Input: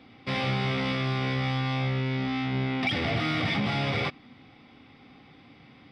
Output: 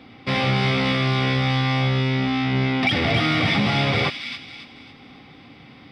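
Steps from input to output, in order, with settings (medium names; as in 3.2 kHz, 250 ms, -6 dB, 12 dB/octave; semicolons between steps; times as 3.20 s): feedback echo behind a high-pass 275 ms, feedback 38%, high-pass 2.7 kHz, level -3 dB; trim +7 dB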